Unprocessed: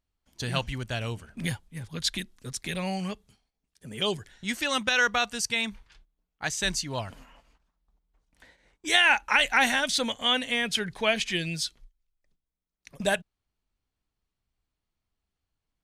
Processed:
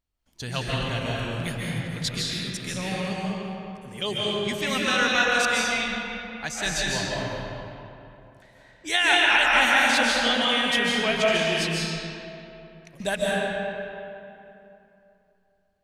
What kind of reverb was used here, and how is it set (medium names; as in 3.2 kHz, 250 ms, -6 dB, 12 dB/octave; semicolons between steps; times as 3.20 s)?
algorithmic reverb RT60 3 s, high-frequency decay 0.6×, pre-delay 105 ms, DRR -5.5 dB; trim -2 dB